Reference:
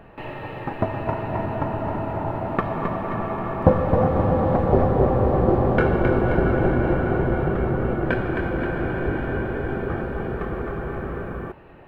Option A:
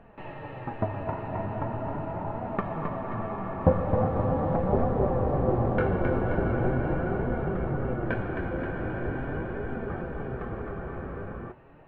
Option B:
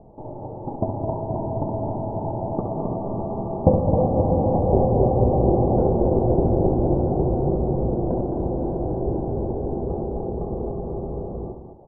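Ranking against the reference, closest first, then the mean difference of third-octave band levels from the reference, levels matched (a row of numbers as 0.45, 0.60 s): A, B; 2.0, 8.0 dB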